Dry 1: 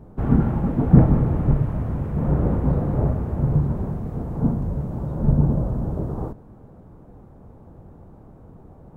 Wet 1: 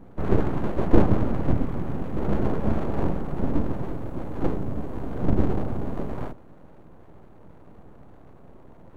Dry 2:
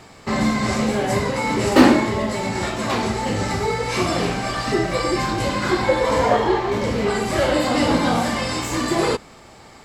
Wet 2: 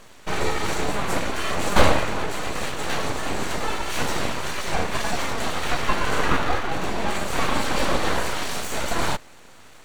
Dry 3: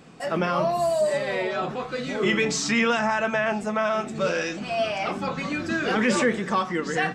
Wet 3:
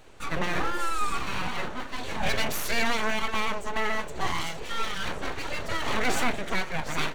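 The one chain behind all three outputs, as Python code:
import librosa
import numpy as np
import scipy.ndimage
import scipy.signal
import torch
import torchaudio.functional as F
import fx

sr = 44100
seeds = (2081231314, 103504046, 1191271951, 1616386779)

y = np.abs(x)
y = fx.notch(y, sr, hz=5100.0, q=11.0)
y = F.gain(torch.from_numpy(y), -1.0).numpy()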